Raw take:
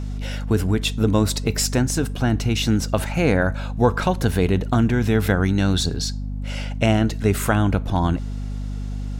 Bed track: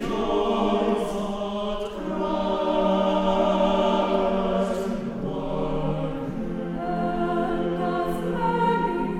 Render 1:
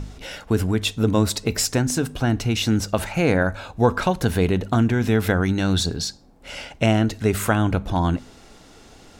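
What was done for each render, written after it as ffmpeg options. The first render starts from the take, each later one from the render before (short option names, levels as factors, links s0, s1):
-af "bandreject=f=50:t=h:w=4,bandreject=f=100:t=h:w=4,bandreject=f=150:t=h:w=4,bandreject=f=200:t=h:w=4,bandreject=f=250:t=h:w=4"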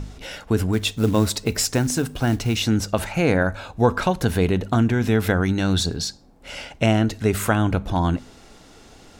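-filter_complex "[0:a]asplit=3[s0][s1][s2];[s0]afade=t=out:st=0.72:d=0.02[s3];[s1]acrusher=bits=6:mode=log:mix=0:aa=0.000001,afade=t=in:st=0.72:d=0.02,afade=t=out:st=2.61:d=0.02[s4];[s2]afade=t=in:st=2.61:d=0.02[s5];[s3][s4][s5]amix=inputs=3:normalize=0"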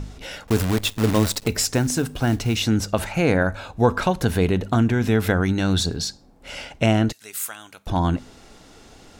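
-filter_complex "[0:a]asettb=1/sr,asplit=3[s0][s1][s2];[s0]atrim=end=0.474[s3];[s1]atrim=start=0.47:end=1.48,asetpts=PTS-STARTPTS,afade=t=in:d=0.004:c=qsin,afade=t=out:st=1.006:d=0.004:c=qsin,acrusher=bits=5:dc=4:mix=0:aa=0.000001[s4];[s2]atrim=start=1.476[s5];[s3][s4]acrossfade=d=0.004:c1=hsin:c2=qsin[s6];[s6][s5]acrossfade=d=0.004:c1=qsin:c2=hsin,asettb=1/sr,asplit=3[s7][s8][s9];[s7]atrim=end=7.124[s10];[s8]atrim=start=7.12:end=7.87,asetpts=PTS-STARTPTS,afade=t=in:d=0.004:c=qsin,afade=t=out:st=0.746:d=0.004:c=qsin,aderivative[s11];[s9]atrim=start=7.866[s12];[s10][s11]acrossfade=d=0.004:c1=hsin:c2=qsin[s13];[s13][s12]acrossfade=d=0.004:c1=qsin:c2=hsin"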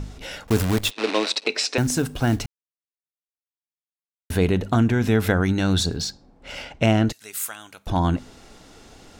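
-filter_complex "[0:a]asettb=1/sr,asplit=3[s0][s1][s2];[s0]atrim=end=0.914[s3];[s1]atrim=start=0.91:end=1.78,asetpts=PTS-STARTPTS,afade=t=in:d=0.004:c=qsin,afade=t=out:st=0.866:d=0.004:c=qsin,highpass=f=320:w=0.5412,highpass=f=320:w=1.3066,equalizer=f=2500:t=q:w=4:g=9,equalizer=f=4000:t=q:w=4:g=7,equalizer=f=7000:t=q:w=4:g=-7,lowpass=f=7200:w=0.5412,lowpass=f=7200:w=1.3066[s4];[s2]atrim=start=1.776[s5];[s3][s4]acrossfade=d=0.004:c1=hsin:c2=qsin[s6];[s6][s5]acrossfade=d=0.004:c1=qsin:c2=hsin,asettb=1/sr,asplit=3[s7][s8][s9];[s7]atrim=end=5.984[s10];[s8]atrim=start=5.98:end=7.07,asetpts=PTS-STARTPTS,afade=t=in:d=0.004:c=qsin,afade=t=out:st=1.086:d=0.004:c=qsin,adynamicsmooth=sensitivity=8:basefreq=6100[s11];[s9]atrim=start=7.066[s12];[s10][s11]acrossfade=d=0.004:c1=hsin:c2=qsin[s13];[s13][s12]acrossfade=d=0.004:c1=qsin:c2=hsin,asplit=3[s14][s15][s16];[s14]atrim=end=2.46,asetpts=PTS-STARTPTS,afade=t=out:st=2.456:d=0.004:c=hsin[s17];[s15]atrim=start=2.46:end=4.3,asetpts=PTS-STARTPTS,volume=0[s18];[s16]atrim=start=4.3,asetpts=PTS-STARTPTS,afade=t=in:d=0.004:c=hsin[s19];[s17][s18][s19]concat=n=3:v=0:a=1"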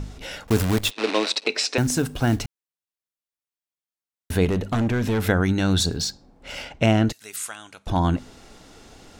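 -filter_complex "[0:a]asettb=1/sr,asplit=3[s0][s1][s2];[s0]atrim=end=4.454[s3];[s1]atrim=start=4.45:end=5.28,asetpts=PTS-STARTPTS,afade=t=in:d=0.004:c=qsin,afade=t=out:st=0.826:d=0.004:c=qsin,volume=8.41,asoftclip=hard,volume=0.119[s4];[s2]atrim=start=5.276[s5];[s3][s4]acrossfade=d=0.004:c1=hsin:c2=qsin[s6];[s6][s5]acrossfade=d=0.004:c1=qsin:c2=hsin,asettb=1/sr,asplit=3[s7][s8][s9];[s7]atrim=end=5.804[s10];[s8]atrim=start=5.8:end=6.69,asetpts=PTS-STARTPTS,afade=t=in:d=0.004:c=qsin,afade=t=out:st=0.886:d=0.004:c=qsin,highshelf=f=6700:g=5[s11];[s9]atrim=start=6.686[s12];[s10][s11]acrossfade=d=0.004:c1=hsin:c2=qsin[s13];[s13][s12]acrossfade=d=0.004:c1=qsin:c2=hsin,asettb=1/sr,asplit=3[s14][s15][s16];[s14]atrim=end=7.364[s17];[s15]atrim=start=7.36:end=7.88,asetpts=PTS-STARTPTS,afade=t=in:d=0.004:c=qsin,afade=t=out:st=0.516:d=0.004:c=qsin,lowpass=f=10000:w=0.5412,lowpass=f=10000:w=1.3066[s18];[s16]atrim=start=7.876[s19];[s17][s18]acrossfade=d=0.004:c1=hsin:c2=qsin[s20];[s20][s19]acrossfade=d=0.004:c1=qsin:c2=hsin"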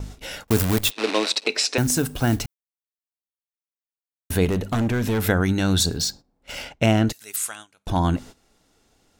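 -af "highshelf=f=10000:g=11.5,agate=range=0.158:threshold=0.0126:ratio=16:detection=peak"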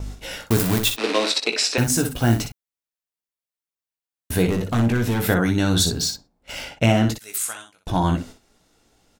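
-af "aecho=1:1:17|60:0.473|0.422"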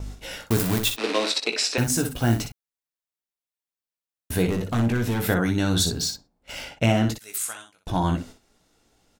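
-af "volume=0.708"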